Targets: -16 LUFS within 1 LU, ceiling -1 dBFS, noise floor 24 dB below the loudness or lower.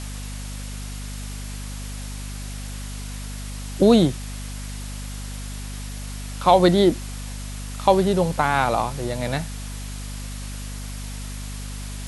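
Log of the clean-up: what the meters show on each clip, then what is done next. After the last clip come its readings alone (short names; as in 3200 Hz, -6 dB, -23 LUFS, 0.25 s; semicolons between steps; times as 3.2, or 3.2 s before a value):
hum 50 Hz; harmonics up to 250 Hz; hum level -30 dBFS; noise floor -32 dBFS; noise floor target -49 dBFS; loudness -25.0 LUFS; peak -3.0 dBFS; loudness target -16.0 LUFS
-> notches 50/100/150/200/250 Hz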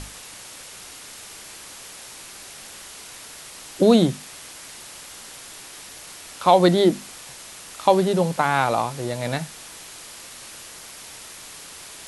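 hum none; noise floor -41 dBFS; noise floor target -44 dBFS
-> denoiser 6 dB, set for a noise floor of -41 dBFS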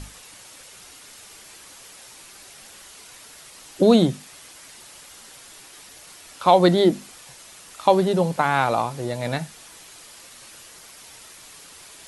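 noise floor -46 dBFS; loudness -20.0 LUFS; peak -3.5 dBFS; loudness target -16.0 LUFS
-> gain +4 dB; limiter -1 dBFS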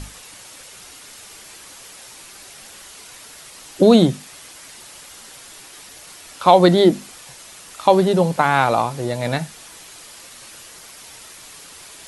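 loudness -16.5 LUFS; peak -1.0 dBFS; noise floor -42 dBFS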